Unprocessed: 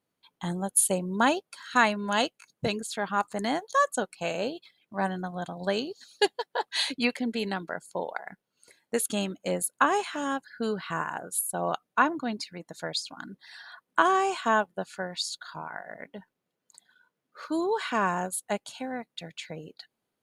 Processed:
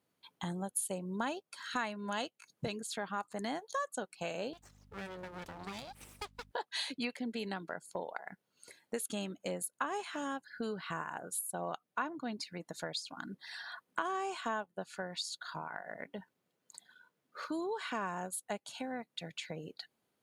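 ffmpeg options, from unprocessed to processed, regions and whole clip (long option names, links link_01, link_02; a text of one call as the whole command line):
ffmpeg -i in.wav -filter_complex "[0:a]asettb=1/sr,asplit=3[link_01][link_02][link_03];[link_01]atrim=end=4.534[link_04];[link_02]atrim=start=4.53:end=6.51,asetpts=PTS-STARTPTS,afade=type=in:duration=0.004:curve=qsin,afade=type=out:start_time=1.976:duration=0.004:curve=qsin,aeval=exprs='abs(val(0))':channel_layout=same,acompressor=threshold=-44dB:ratio=2:attack=3.2:release=140:knee=1:detection=peak,aeval=exprs='val(0)+0.001*(sin(2*PI*50*n/s)+sin(2*PI*2*50*n/s)/2+sin(2*PI*3*50*n/s)/3+sin(2*PI*4*50*n/s)/4+sin(2*PI*5*50*n/s)/5)':channel_layout=same[link_05];[link_03]atrim=start=6.506[link_06];[link_04][link_05]acrossfade=duration=0.004:curve1=hsin:curve2=qsin[link_07];[link_07][link_06]acrossfade=duration=0.004:curve1=qsin:curve2=hsin,highpass=55,acompressor=threshold=-42dB:ratio=2.5,volume=1.5dB" out.wav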